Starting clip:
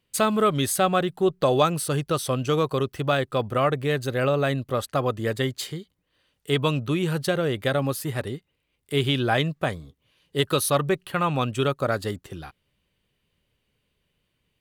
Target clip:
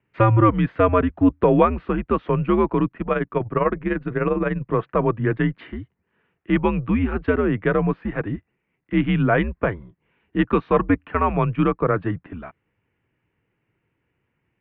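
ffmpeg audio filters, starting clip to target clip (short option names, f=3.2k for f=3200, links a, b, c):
-filter_complex "[0:a]highpass=f=190:t=q:w=0.5412,highpass=f=190:t=q:w=1.307,lowpass=f=2.4k:t=q:w=0.5176,lowpass=f=2.4k:t=q:w=0.7071,lowpass=f=2.4k:t=q:w=1.932,afreqshift=-99,equalizer=f=130:w=1.3:g=7,asettb=1/sr,asplit=3[a][b][c];[a]atrim=end=2.874[d];[b]atrim=start=2.87:end=4.62,asetpts=PTS-STARTPTS,afade=t=in:d=0.004:c=qsin,afade=t=out:st=1.746:d=0.004:c=qsin,tremolo=f=20:d=0.667[e];[c]atrim=start=4.616[f];[d][e]acrossfade=d=0.004:c1=hsin:c2=qsin[g];[g][f]acrossfade=d=0.004:c1=qsin:c2=hsin,volume=4dB"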